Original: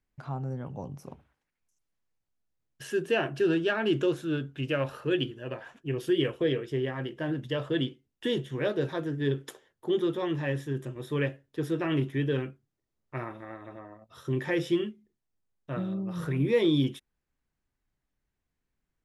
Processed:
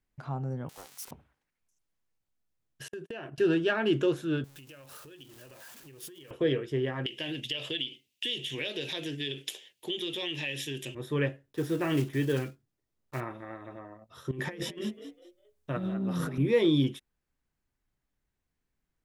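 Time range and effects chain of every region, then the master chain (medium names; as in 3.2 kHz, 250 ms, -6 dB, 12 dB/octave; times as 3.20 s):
0.69–1.11 s: zero-crossing glitches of -32.5 dBFS + high-pass 1 kHz + loudspeaker Doppler distortion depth 0.47 ms
2.88–3.38 s: gate -37 dBFS, range -46 dB + compression 12:1, threshold -36 dBFS
4.44–6.31 s: jump at every zero crossing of -39.5 dBFS + compression 12:1, threshold -34 dBFS + pre-emphasis filter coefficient 0.8
7.06–10.95 s: high-pass 240 Hz 6 dB/octave + resonant high shelf 1.9 kHz +12.5 dB, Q 3 + compression 4:1, threshold -31 dBFS
11.46–13.21 s: block-companded coder 5-bit + doubling 17 ms -12 dB
14.31–16.38 s: treble shelf 5.1 kHz +4.5 dB + compressor with a negative ratio -33 dBFS, ratio -0.5 + frequency-shifting echo 201 ms, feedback 31%, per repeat +69 Hz, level -11 dB
whole clip: none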